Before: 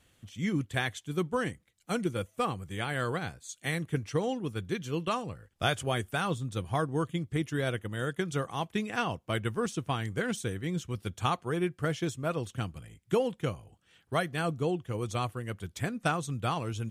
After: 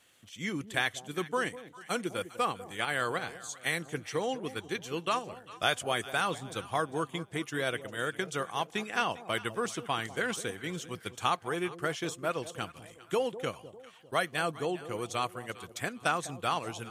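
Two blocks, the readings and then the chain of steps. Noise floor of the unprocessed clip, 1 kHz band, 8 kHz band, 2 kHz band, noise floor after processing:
-69 dBFS, +1.5 dB, +2.5 dB, +2.5 dB, -55 dBFS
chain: in parallel at -2.5 dB: level quantiser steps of 17 dB; on the sum: HPF 610 Hz 6 dB/oct; echo with dull and thin repeats by turns 0.2 s, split 820 Hz, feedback 60%, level -13 dB

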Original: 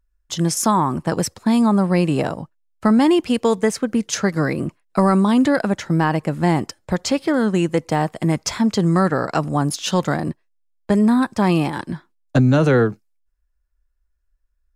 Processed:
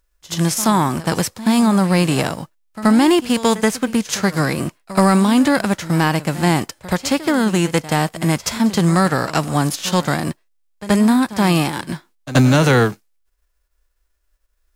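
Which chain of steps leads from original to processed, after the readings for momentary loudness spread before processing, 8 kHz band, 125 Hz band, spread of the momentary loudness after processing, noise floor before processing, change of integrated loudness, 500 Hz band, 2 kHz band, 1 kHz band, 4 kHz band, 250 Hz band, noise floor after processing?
9 LU, +3.5 dB, +2.0 dB, 9 LU, -68 dBFS, +2.0 dB, +0.5 dB, +5.0 dB, +2.0 dB, +5.5 dB, +1.5 dB, -66 dBFS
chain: spectral whitening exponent 0.6; pre-echo 78 ms -16 dB; gain +1.5 dB

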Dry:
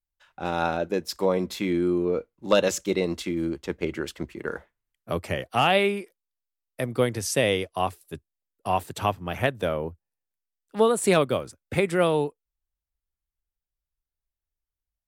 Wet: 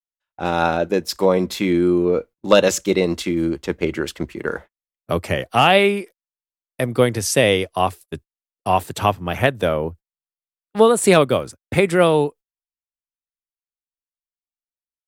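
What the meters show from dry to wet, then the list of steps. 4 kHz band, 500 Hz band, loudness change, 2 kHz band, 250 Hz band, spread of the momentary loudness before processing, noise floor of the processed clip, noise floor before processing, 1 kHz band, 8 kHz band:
+7.0 dB, +7.0 dB, +7.0 dB, +7.0 dB, +7.0 dB, 13 LU, under -85 dBFS, under -85 dBFS, +7.0 dB, +7.0 dB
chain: gate -43 dBFS, range -32 dB; gain +7 dB

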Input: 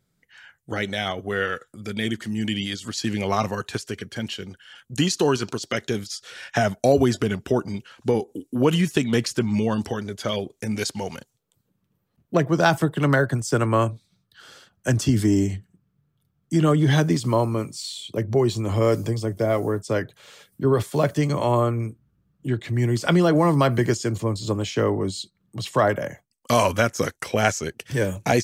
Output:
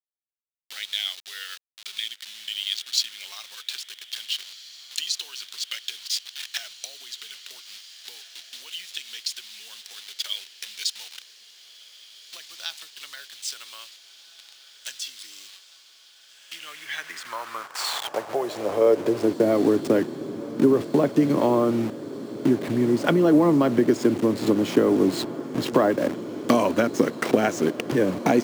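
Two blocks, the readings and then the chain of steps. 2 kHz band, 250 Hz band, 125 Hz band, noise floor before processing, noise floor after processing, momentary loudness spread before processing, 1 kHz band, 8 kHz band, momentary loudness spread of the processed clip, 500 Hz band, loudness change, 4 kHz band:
-6.0 dB, 0.0 dB, -12.0 dB, -72 dBFS, -53 dBFS, 12 LU, -4.5 dB, -1.5 dB, 19 LU, -1.0 dB, -1.0 dB, +2.5 dB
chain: level-crossing sampler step -30.5 dBFS; tilt -1.5 dB/oct; compressor 5:1, threshold -28 dBFS, peak gain reduction 15.5 dB; diffused feedback echo 1.761 s, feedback 72%, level -15.5 dB; high-pass sweep 3600 Hz -> 270 Hz, 16.25–19.49; gain +8.5 dB

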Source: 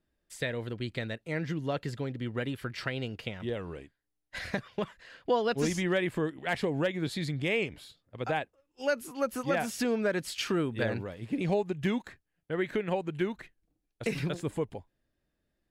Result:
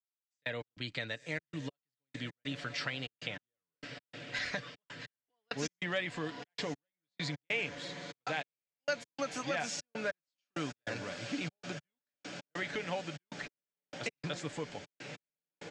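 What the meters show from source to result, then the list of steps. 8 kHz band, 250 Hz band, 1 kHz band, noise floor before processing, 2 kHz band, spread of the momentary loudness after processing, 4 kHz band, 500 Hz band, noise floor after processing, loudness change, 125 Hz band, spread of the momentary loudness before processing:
-2.0 dB, -10.0 dB, -6.5 dB, -82 dBFS, -2.5 dB, 13 LU, -1.0 dB, -10.0 dB, under -85 dBFS, -7.0 dB, -9.5 dB, 9 LU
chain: in parallel at -1 dB: limiter -27.5 dBFS, peak gain reduction 10.5 dB; on the sum: tilt +2.5 dB/oct; on a send: diffused feedback echo 1.037 s, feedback 74%, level -14 dB; on the sum: step gate "...x.xxxx.x" 98 bpm -60 dB; steep low-pass 7000 Hz 36 dB/oct; bell 400 Hz -8 dB 0.25 oct; comb 6.9 ms, depth 39%; three-band squash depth 40%; gain -6.5 dB

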